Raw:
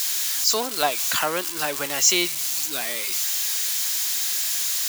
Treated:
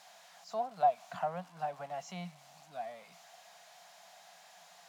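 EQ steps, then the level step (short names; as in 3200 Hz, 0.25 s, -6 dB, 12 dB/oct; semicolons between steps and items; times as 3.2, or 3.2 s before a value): double band-pass 350 Hz, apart 2 oct; 0.0 dB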